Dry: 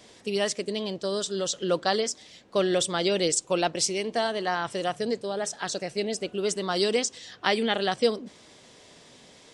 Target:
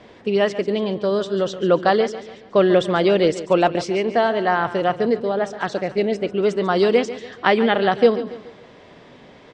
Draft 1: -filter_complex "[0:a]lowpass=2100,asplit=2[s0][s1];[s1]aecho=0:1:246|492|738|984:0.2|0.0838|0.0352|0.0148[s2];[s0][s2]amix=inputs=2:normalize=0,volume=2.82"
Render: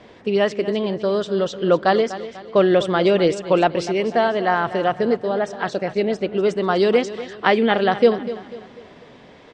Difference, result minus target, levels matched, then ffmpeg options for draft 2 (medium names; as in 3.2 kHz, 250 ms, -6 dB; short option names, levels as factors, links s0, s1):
echo 104 ms late
-filter_complex "[0:a]lowpass=2100,asplit=2[s0][s1];[s1]aecho=0:1:142|284|426|568:0.2|0.0838|0.0352|0.0148[s2];[s0][s2]amix=inputs=2:normalize=0,volume=2.82"